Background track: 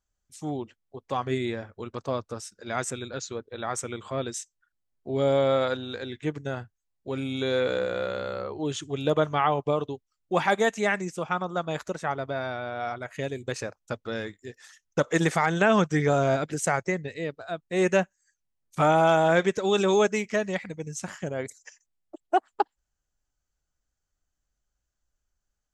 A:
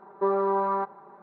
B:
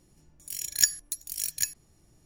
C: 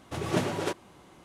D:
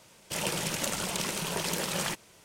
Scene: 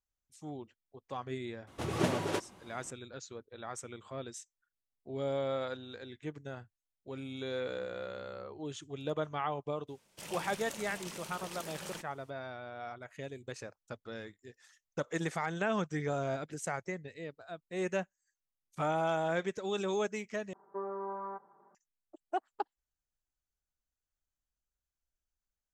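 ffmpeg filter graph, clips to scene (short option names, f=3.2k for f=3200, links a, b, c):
-filter_complex "[0:a]volume=-11.5dB[a];[1:a]lowpass=f=2k:w=0.5412,lowpass=f=2k:w=1.3066[b];[a]asplit=2[c][d];[c]atrim=end=20.534[e];[b]atrim=end=1.22,asetpts=PTS-STARTPTS,volume=-14.5dB[f];[d]atrim=start=21.746[g];[3:a]atrim=end=1.24,asetpts=PTS-STARTPTS,volume=-3dB,afade=t=in:d=0.004:c=hsin,afade=t=out:st=1.236:d=0.004:c=hsin,adelay=1670[h];[4:a]atrim=end=2.44,asetpts=PTS-STARTPTS,volume=-13.5dB,afade=t=in:d=0.02,afade=t=out:st=2.42:d=0.02,adelay=9870[i];[e][f]acrossfade=d=0.004:c1=hsin:c2=hsin[j];[j][g]acrossfade=d=0.004:c1=hsin:c2=hsin[k];[k][h][i]amix=inputs=3:normalize=0"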